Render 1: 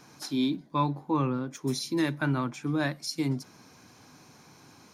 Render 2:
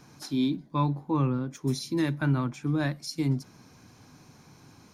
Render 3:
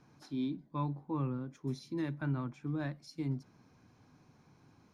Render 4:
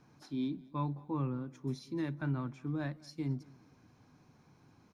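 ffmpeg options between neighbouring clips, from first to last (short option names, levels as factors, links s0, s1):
-af "lowshelf=f=170:g=11.5,volume=0.75"
-af "lowpass=f=2300:p=1,volume=0.355"
-af "aecho=1:1:214|428|642:0.0668|0.0261|0.0102"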